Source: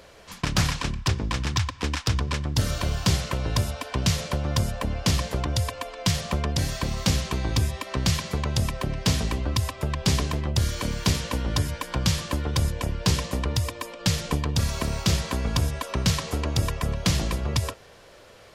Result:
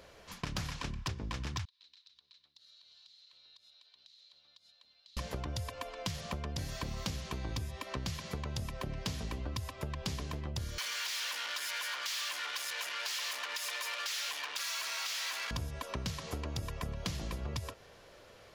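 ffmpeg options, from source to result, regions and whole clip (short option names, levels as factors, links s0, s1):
-filter_complex "[0:a]asettb=1/sr,asplit=3[s0][s1][s2];[s0]atrim=end=1.654[s3];[s1]atrim=start=1.65:end=5.17,asetpts=PTS-STARTPTS,afade=t=in:d=0.004:c=qsin,afade=t=out:st=3.516:d=0.004:c=qsin,bandpass=f=4000:t=q:w=13,acompressor=threshold=0.00355:ratio=12:attack=3.2:release=140:knee=1:detection=peak[s4];[s2]atrim=start=5.166[s5];[s3][s4]acrossfade=d=0.004:c1=hsin:c2=qsin[s6];[s6][s5]acrossfade=d=0.004:c1=qsin:c2=hsin,asettb=1/sr,asplit=3[s7][s8][s9];[s7]atrim=end=10.784[s10];[s8]atrim=start=10.78:end=15.51,asetpts=PTS-STARTPTS,afade=t=in:d=0.004:c=qsin,afade=t=out:st=4.726:d=0.004:c=qsin,acompressor=threshold=0.0316:ratio=2.5:attack=3.2:release=140:knee=1:detection=peak,asplit=2[s11][s12];[s12]highpass=f=720:p=1,volume=56.2,asoftclip=type=tanh:threshold=0.158[s13];[s11][s13]amix=inputs=2:normalize=0,lowpass=f=5000:p=1,volume=0.501,highpass=1500[s14];[s9]atrim=start=15.506[s15];[s10][s14]acrossfade=d=0.004:c1=hsin:c2=qsin[s16];[s16][s15]acrossfade=d=0.004:c1=qsin:c2=hsin,equalizer=f=8400:w=4.3:g=-5.5,acompressor=threshold=0.0398:ratio=6,volume=0.473"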